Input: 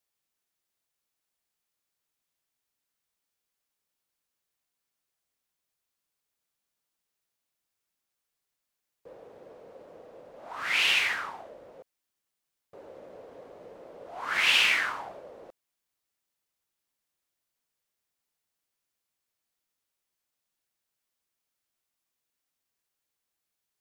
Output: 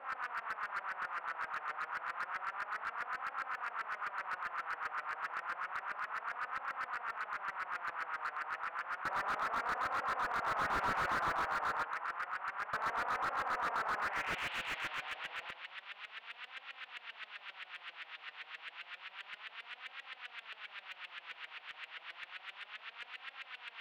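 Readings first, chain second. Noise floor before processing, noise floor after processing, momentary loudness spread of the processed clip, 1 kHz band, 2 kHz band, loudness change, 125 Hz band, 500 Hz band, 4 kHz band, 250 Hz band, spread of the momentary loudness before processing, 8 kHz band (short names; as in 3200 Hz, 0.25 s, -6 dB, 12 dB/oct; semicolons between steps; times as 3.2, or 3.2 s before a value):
-85 dBFS, -59 dBFS, 12 LU, +6.5 dB, -5.0 dB, -15.0 dB, n/a, -0.5 dB, -14.5 dB, +1.0 dB, 19 LU, -13.5 dB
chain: per-bin compression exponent 0.2; bell 180 Hz +3.5 dB; LFO low-pass saw up 7.6 Hz 520–1700 Hz; flange 0.3 Hz, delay 3.6 ms, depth 3.1 ms, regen +30%; band-pass sweep 1300 Hz -> 3800 Hz, 13.96–14.47; on a send: dark delay 0.116 s, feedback 55%, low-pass 1400 Hz, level -10 dB; on the sum: slew limiter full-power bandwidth 24 Hz; gain +2.5 dB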